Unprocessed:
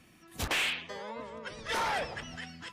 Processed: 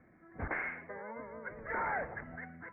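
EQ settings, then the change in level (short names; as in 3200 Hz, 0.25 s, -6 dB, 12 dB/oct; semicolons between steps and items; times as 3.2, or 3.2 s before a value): dynamic EQ 540 Hz, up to -6 dB, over -49 dBFS, Q 1.7; rippled Chebyshev low-pass 2200 Hz, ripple 6 dB; air absorption 160 m; +2.5 dB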